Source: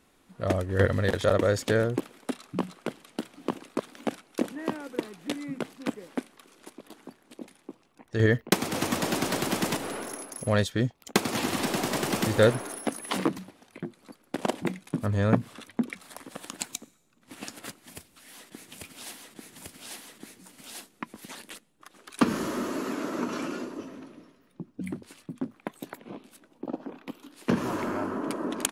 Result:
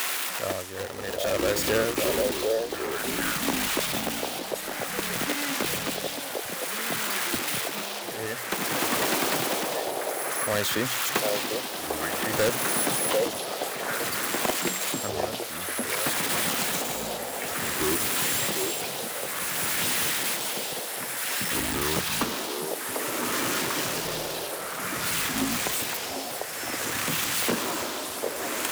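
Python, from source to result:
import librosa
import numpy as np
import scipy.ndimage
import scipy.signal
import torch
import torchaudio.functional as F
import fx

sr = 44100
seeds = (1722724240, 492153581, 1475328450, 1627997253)

p1 = x + 0.5 * 10.0 ** (-14.5 / 20.0) * np.diff(np.sign(x), prepend=np.sign(x[:1]))
p2 = fx.bass_treble(p1, sr, bass_db=-12, treble_db=-12)
p3 = fx.hum_notches(p2, sr, base_hz=60, count=2)
p4 = (np.mod(10.0 ** (17.0 / 20.0) * p3 + 1.0, 2.0) - 1.0) / 10.0 ** (17.0 / 20.0)
p5 = p3 + F.gain(torch.from_numpy(p4), -4.5).numpy()
p6 = fx.echo_pitch(p5, sr, ms=285, semitones=-6, count=3, db_per_echo=-6.0)
p7 = p6 * (1.0 - 0.82 / 2.0 + 0.82 / 2.0 * np.cos(2.0 * np.pi * 0.55 * (np.arange(len(p6)) / sr)))
p8 = p7 + fx.echo_stepped(p7, sr, ms=746, hz=580.0, octaves=1.4, feedback_pct=70, wet_db=0, dry=0)
y = fx.band_squash(p8, sr, depth_pct=40)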